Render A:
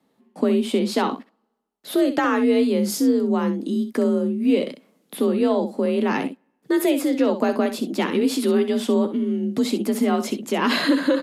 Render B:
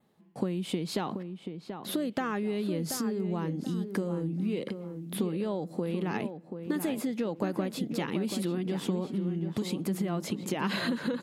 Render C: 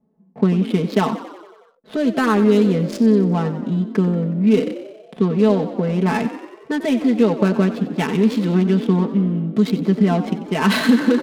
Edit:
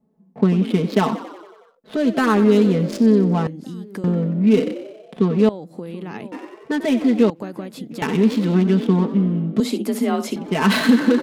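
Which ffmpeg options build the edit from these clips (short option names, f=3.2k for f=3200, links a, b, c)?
-filter_complex "[1:a]asplit=3[a][b][c];[2:a]asplit=5[d][e][f][g][h];[d]atrim=end=3.472[i];[a]atrim=start=3.468:end=4.042[j];[e]atrim=start=4.038:end=5.492[k];[b]atrim=start=5.488:end=6.322[l];[f]atrim=start=6.318:end=7.302[m];[c]atrim=start=7.298:end=8.022[n];[g]atrim=start=8.018:end=9.602[o];[0:a]atrim=start=9.598:end=10.362[p];[h]atrim=start=10.358[q];[i][j]acrossfade=d=0.004:c1=hsin:c2=hsin[r];[r][k]acrossfade=d=0.004:c1=hsin:c2=hsin[s];[s][l]acrossfade=d=0.004:c1=hsin:c2=hsin[t];[t][m]acrossfade=d=0.004:c1=hsin:c2=hsin[u];[u][n]acrossfade=d=0.004:c1=hsin:c2=hsin[v];[v][o]acrossfade=d=0.004:c1=hsin:c2=hsin[w];[w][p]acrossfade=d=0.004:c1=hsin:c2=hsin[x];[x][q]acrossfade=d=0.004:c1=hsin:c2=hsin"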